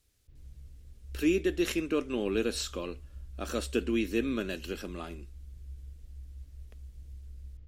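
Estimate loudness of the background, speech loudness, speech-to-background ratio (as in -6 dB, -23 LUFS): -48.5 LUFS, -32.0 LUFS, 16.5 dB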